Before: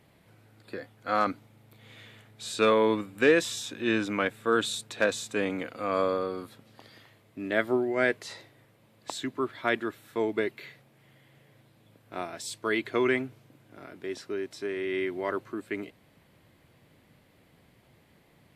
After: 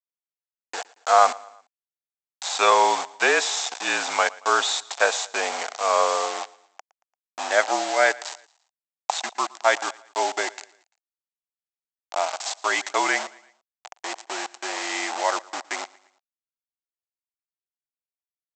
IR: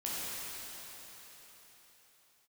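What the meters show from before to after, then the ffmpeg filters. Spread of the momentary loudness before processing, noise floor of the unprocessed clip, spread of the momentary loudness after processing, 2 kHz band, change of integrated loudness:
18 LU, −62 dBFS, 15 LU, +7.0 dB, +5.5 dB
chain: -af "afreqshift=-36,aresample=16000,acrusher=bits=5:mix=0:aa=0.000001,aresample=44100,aecho=1:1:114|228|342:0.075|0.0352|0.0166,crystalizer=i=1.5:c=0,highpass=frequency=760:width_type=q:width=4.9,volume=4dB"

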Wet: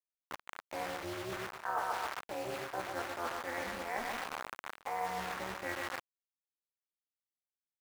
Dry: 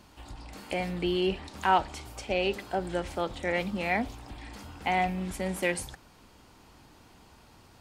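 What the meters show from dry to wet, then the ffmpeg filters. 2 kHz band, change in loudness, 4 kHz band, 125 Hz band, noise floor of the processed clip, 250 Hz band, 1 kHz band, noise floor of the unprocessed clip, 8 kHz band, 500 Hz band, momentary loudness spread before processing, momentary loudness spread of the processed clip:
−6.5 dB, −9.0 dB, −8.5 dB, −15.0 dB, below −85 dBFS, −14.5 dB, −7.0 dB, −57 dBFS, −6.0 dB, −10.0 dB, 18 LU, 8 LU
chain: -filter_complex "[0:a]lowpass=frequency=1700:width=0.5412,lowpass=frequency=1700:width=1.3066,asplit=2[link_01][link_02];[link_02]adelay=26,volume=-6.5dB[link_03];[link_01][link_03]amix=inputs=2:normalize=0,aecho=1:1:137|274|411|548|685:0.447|0.183|0.0751|0.0308|0.0126,acrusher=bits=5:mix=0:aa=0.000001,highpass=frequency=570:poles=1,areverse,acompressor=threshold=-37dB:ratio=6,areverse,equalizer=frequency=1300:width=0.67:gain=10,tremolo=f=260:d=0.857"

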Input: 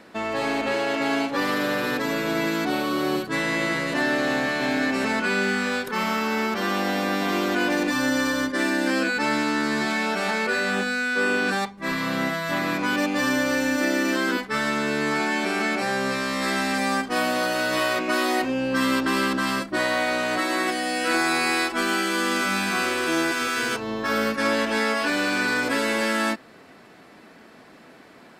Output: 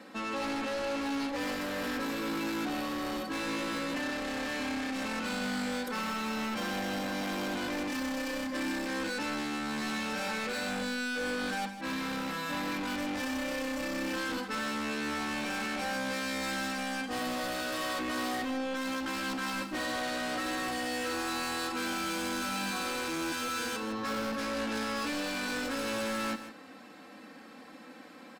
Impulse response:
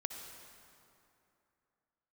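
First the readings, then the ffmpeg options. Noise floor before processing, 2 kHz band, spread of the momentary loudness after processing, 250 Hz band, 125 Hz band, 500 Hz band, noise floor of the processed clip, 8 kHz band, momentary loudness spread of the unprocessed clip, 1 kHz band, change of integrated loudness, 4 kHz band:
−49 dBFS, −11.5 dB, 2 LU, −9.0 dB, −10.0 dB, −11.0 dB, −50 dBFS, −7.0 dB, 3 LU, −9.5 dB, −10.0 dB, −8.0 dB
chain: -af "highpass=95,aecho=1:1:3.8:0.9,alimiter=limit=-12.5dB:level=0:latency=1,asoftclip=type=tanh:threshold=-27.5dB,aecho=1:1:158:0.266,volume=-4.5dB"

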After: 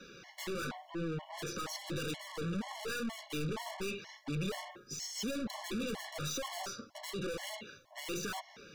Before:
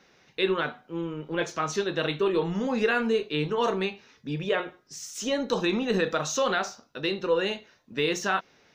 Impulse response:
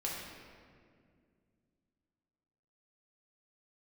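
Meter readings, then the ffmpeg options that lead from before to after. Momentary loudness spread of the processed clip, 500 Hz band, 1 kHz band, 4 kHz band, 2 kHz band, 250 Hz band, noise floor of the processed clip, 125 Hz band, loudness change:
6 LU, −15.5 dB, −13.0 dB, −9.0 dB, −12.5 dB, −10.0 dB, −59 dBFS, −6.0 dB, −12.0 dB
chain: -filter_complex "[0:a]acrossover=split=290|5400[link_01][link_02][link_03];[link_03]acompressor=threshold=-57dB:ratio=6[link_04];[link_01][link_02][link_04]amix=inputs=3:normalize=0,flanger=delay=3.9:depth=5.8:regen=-33:speed=0.94:shape=triangular,aeval=exprs='(tanh(200*val(0)+0.2)-tanh(0.2))/200':channel_layout=same,acrossover=split=270|3000[link_05][link_06][link_07];[link_06]acompressor=threshold=-53dB:ratio=2[link_08];[link_05][link_08][link_07]amix=inputs=3:normalize=0,afftfilt=real='re*gt(sin(2*PI*2.1*pts/sr)*(1-2*mod(floor(b*sr/1024/570),2)),0)':imag='im*gt(sin(2*PI*2.1*pts/sr)*(1-2*mod(floor(b*sr/1024/570),2)),0)':win_size=1024:overlap=0.75,volume=13dB"

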